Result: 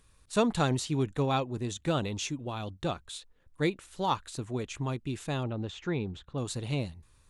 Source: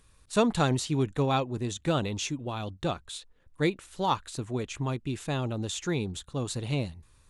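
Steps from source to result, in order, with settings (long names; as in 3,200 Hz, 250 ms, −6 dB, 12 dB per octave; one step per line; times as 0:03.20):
0:05.43–0:06.38: low-pass filter 2,800 Hz 12 dB per octave
level −2 dB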